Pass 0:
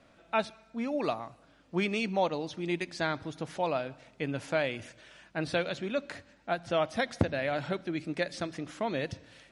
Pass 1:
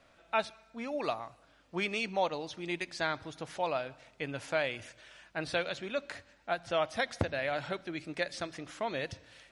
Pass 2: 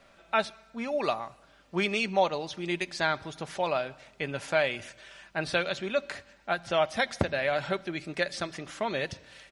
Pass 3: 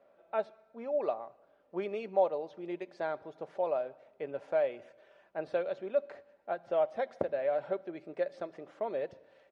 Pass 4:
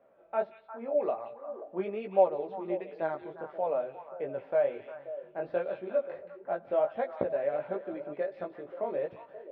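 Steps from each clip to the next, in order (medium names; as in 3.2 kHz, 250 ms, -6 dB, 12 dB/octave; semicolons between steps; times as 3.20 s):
peaking EQ 210 Hz -8 dB 2.1 oct
comb 5.1 ms, depth 33%; trim +4.5 dB
band-pass filter 520 Hz, Q 2
chorus 1.4 Hz, delay 15 ms, depth 6.4 ms; distance through air 400 m; repeats whose band climbs or falls 177 ms, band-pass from 3.1 kHz, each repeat -1.4 oct, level -5 dB; trim +6 dB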